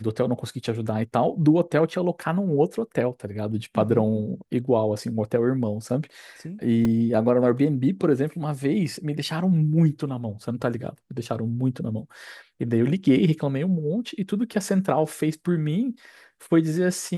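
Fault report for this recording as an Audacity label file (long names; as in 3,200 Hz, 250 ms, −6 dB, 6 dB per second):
6.850000	6.850000	drop-out 2 ms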